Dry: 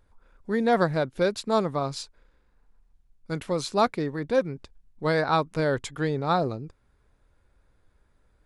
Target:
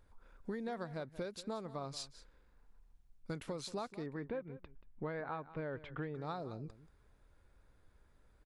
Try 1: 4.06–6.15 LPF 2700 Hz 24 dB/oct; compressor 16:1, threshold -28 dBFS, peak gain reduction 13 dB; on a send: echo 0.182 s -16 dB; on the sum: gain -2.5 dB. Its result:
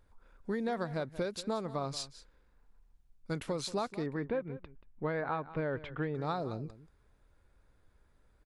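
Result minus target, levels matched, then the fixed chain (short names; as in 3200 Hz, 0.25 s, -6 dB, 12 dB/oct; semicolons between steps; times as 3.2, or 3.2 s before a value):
compressor: peak gain reduction -7 dB
4.06–6.15 LPF 2700 Hz 24 dB/oct; compressor 16:1, threshold -35.5 dBFS, peak gain reduction 20 dB; on a send: echo 0.182 s -16 dB; on the sum: gain -2.5 dB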